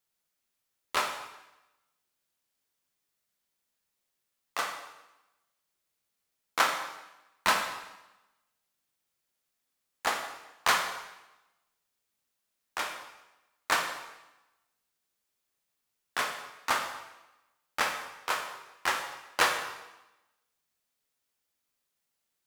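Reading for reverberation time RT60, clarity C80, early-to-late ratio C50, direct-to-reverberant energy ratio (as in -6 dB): 0.95 s, 8.0 dB, 6.0 dB, 3.0 dB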